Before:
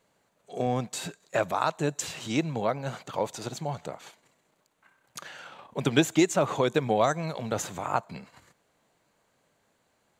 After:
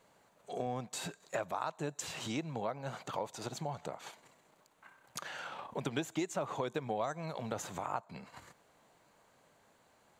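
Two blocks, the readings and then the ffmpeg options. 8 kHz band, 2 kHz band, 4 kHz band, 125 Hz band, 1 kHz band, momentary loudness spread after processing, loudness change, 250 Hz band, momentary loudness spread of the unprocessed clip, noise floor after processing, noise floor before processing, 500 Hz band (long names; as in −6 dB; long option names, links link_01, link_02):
−9.0 dB, −10.0 dB, −9.5 dB, −10.5 dB, −8.5 dB, 10 LU, −11.0 dB, −12.0 dB, 19 LU, −68 dBFS, −71 dBFS, −11.0 dB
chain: -af "equalizer=frequency=910:width=1.1:gain=4,acompressor=threshold=-42dB:ratio=2.5,volume=1.5dB"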